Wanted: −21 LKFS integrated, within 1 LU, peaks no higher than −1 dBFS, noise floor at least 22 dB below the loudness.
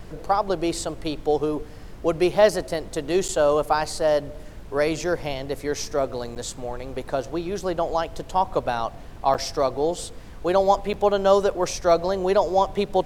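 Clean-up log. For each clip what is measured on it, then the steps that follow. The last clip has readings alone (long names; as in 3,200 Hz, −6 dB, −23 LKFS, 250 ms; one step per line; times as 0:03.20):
number of dropouts 4; longest dropout 8.2 ms; background noise floor −40 dBFS; target noise floor −46 dBFS; integrated loudness −24.0 LKFS; sample peak −5.0 dBFS; target loudness −21.0 LKFS
→ repair the gap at 0:03.28/0:06.35/0:09.34/0:10.93, 8.2 ms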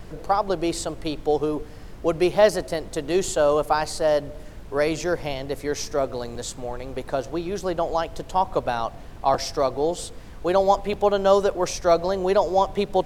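number of dropouts 0; background noise floor −40 dBFS; target noise floor −46 dBFS
→ noise reduction from a noise print 6 dB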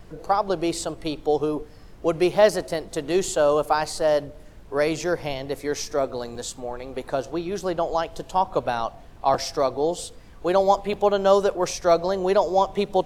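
background noise floor −45 dBFS; target noise floor −46 dBFS
→ noise reduction from a noise print 6 dB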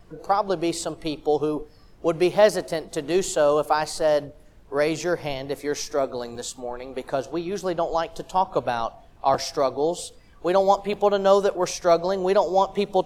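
background noise floor −51 dBFS; integrated loudness −24.0 LKFS; sample peak −5.0 dBFS; target loudness −21.0 LKFS
→ level +3 dB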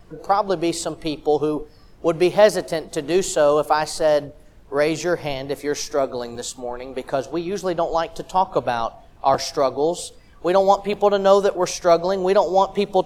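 integrated loudness −21.0 LKFS; sample peak −2.0 dBFS; background noise floor −48 dBFS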